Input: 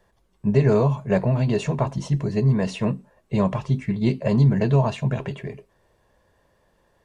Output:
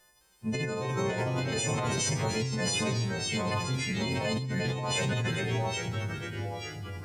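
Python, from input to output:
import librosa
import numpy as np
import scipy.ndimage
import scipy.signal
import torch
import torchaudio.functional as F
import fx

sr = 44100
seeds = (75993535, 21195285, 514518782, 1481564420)

p1 = fx.freq_snap(x, sr, grid_st=3)
p2 = fx.tilt_shelf(p1, sr, db=-5.5, hz=1400.0)
p3 = p2 + fx.echo_feedback(p2, sr, ms=84, feedback_pct=53, wet_db=-13.0, dry=0)
p4 = fx.echo_pitch(p3, sr, ms=209, semitones=-2, count=3, db_per_echo=-6.0)
p5 = fx.transient(p4, sr, attack_db=-2, sustain_db=3)
p6 = fx.over_compress(p5, sr, threshold_db=-25.0, ratio=-1.0)
y = p6 * librosa.db_to_amplitude(-4.5)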